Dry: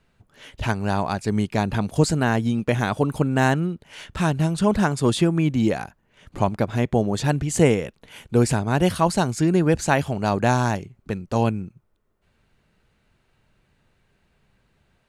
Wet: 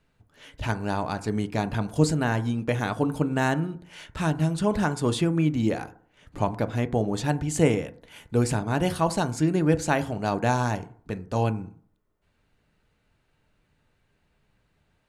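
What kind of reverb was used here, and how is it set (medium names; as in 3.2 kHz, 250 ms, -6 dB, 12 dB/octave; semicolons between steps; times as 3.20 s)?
FDN reverb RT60 0.52 s, low-frequency decay 1×, high-frequency decay 0.3×, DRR 10 dB; trim -4.5 dB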